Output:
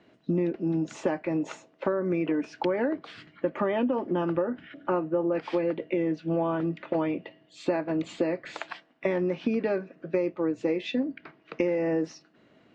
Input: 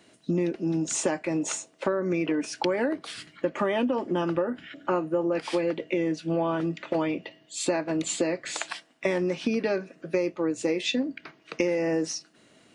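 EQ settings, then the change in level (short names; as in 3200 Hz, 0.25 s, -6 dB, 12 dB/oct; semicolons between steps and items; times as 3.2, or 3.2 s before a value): LPF 2200 Hz 6 dB/oct; air absorption 130 m; 0.0 dB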